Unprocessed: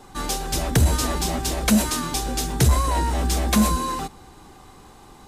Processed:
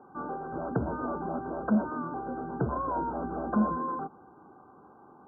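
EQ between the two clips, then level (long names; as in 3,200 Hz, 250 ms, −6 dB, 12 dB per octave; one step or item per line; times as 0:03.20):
high-pass filter 210 Hz 12 dB per octave
linear-phase brick-wall low-pass 1,600 Hz
high-frequency loss of the air 480 metres
−3.5 dB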